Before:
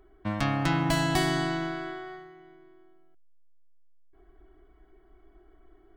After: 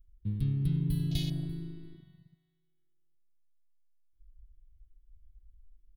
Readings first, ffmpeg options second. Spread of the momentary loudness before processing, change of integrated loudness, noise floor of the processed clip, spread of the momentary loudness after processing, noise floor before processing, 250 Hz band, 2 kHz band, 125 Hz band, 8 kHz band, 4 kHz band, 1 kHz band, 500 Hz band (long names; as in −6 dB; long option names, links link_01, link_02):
15 LU, −4.5 dB, −74 dBFS, 13 LU, −59 dBFS, −6.5 dB, −26.5 dB, +0.5 dB, −14.0 dB, −10.5 dB, below −35 dB, −20.0 dB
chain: -filter_complex "[0:a]firequalizer=gain_entry='entry(130,0);entry(420,-29);entry(940,-26);entry(3700,-2);entry(6900,-26);entry(10000,8)':delay=0.05:min_phase=1,asplit=2[link_01][link_02];[link_02]adelay=342,lowpass=frequency=4300:poles=1,volume=-12dB,asplit=2[link_03][link_04];[link_04]adelay=342,lowpass=frequency=4300:poles=1,volume=0.3,asplit=2[link_05][link_06];[link_06]adelay=342,lowpass=frequency=4300:poles=1,volume=0.3[link_07];[link_01][link_03][link_05][link_07]amix=inputs=4:normalize=0,afwtdn=0.01,volume=2.5dB"